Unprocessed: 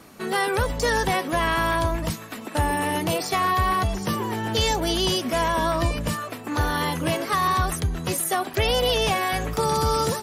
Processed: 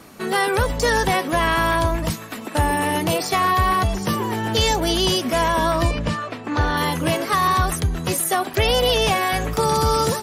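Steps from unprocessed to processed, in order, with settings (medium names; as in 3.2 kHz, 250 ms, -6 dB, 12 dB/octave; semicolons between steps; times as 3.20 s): 5.91–6.77 s: low-pass 4.8 kHz 12 dB/octave; trim +3.5 dB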